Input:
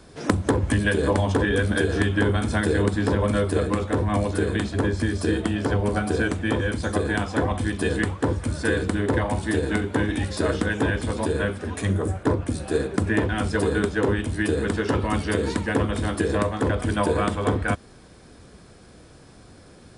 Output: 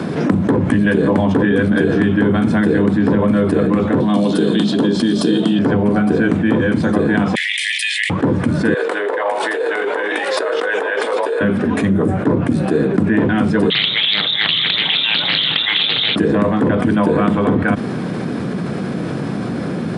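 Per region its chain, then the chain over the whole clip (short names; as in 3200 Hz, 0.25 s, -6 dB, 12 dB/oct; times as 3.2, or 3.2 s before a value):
4–5.59 HPF 150 Hz 24 dB/oct + resonant high shelf 2700 Hz +7.5 dB, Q 3
7.35–8.1 steep high-pass 1900 Hz 96 dB/oct + fast leveller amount 70%
8.74–11.41 negative-ratio compressor -30 dBFS + Chebyshev high-pass 450 Hz, order 4
13.7–16.16 inverted band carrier 3700 Hz + Doppler distortion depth 0.35 ms
whole clip: HPF 170 Hz 24 dB/oct; tone controls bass +14 dB, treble -15 dB; fast leveller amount 70%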